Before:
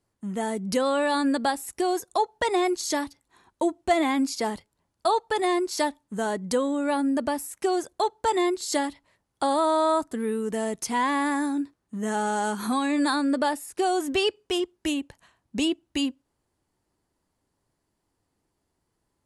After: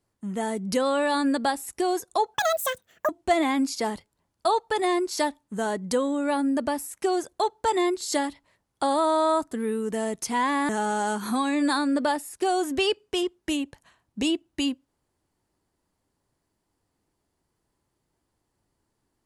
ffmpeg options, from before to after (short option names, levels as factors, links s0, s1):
-filter_complex "[0:a]asplit=4[s0][s1][s2][s3];[s0]atrim=end=2.344[s4];[s1]atrim=start=2.34:end=3.69,asetpts=PTS-STARTPTS,asetrate=79380,aresample=44100[s5];[s2]atrim=start=3.686:end=11.292[s6];[s3]atrim=start=12.058[s7];[s4][s5]acrossfade=d=0.004:c1=hsin:c2=hsin[s8];[s8][s6]acrossfade=d=0.004:c1=hsin:c2=hsin[s9];[s9][s7]acrossfade=d=0.004:c1=hsin:c2=hsin"